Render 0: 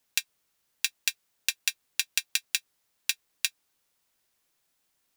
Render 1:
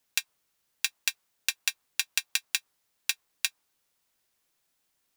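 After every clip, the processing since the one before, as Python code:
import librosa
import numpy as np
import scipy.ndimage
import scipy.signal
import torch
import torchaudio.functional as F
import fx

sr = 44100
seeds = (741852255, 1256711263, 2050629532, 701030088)

y = fx.dynamic_eq(x, sr, hz=990.0, q=1.1, threshold_db=-52.0, ratio=4.0, max_db=7)
y = F.gain(torch.from_numpy(y), -1.0).numpy()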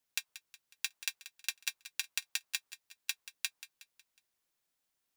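y = fx.echo_feedback(x, sr, ms=183, feedback_pct=46, wet_db=-14.5)
y = F.gain(torch.from_numpy(y), -8.0).numpy()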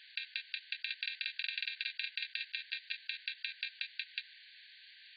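y = fx.level_steps(x, sr, step_db=9)
y = fx.brickwall_bandpass(y, sr, low_hz=1500.0, high_hz=4700.0)
y = fx.env_flatten(y, sr, amount_pct=100)
y = F.gain(torch.from_numpy(y), 1.0).numpy()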